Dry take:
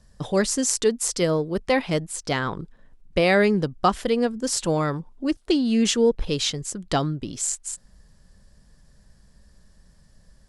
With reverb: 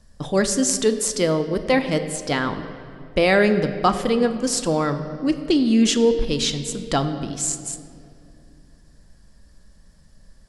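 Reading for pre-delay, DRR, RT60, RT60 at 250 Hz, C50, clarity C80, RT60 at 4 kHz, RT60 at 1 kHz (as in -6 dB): 3 ms, 8.0 dB, 2.5 s, 3.3 s, 10.5 dB, 11.5 dB, 1.6 s, 2.2 s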